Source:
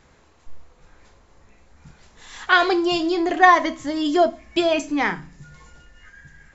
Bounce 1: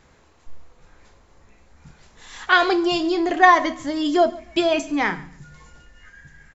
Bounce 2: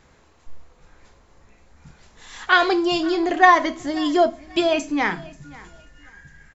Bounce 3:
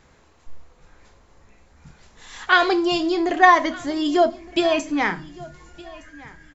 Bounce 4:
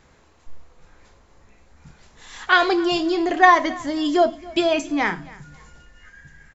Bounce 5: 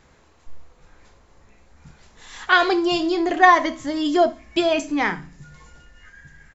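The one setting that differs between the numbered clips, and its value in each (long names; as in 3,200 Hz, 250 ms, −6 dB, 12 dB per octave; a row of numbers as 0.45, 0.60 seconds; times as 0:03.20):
repeating echo, delay time: 140, 536, 1,215, 275, 68 milliseconds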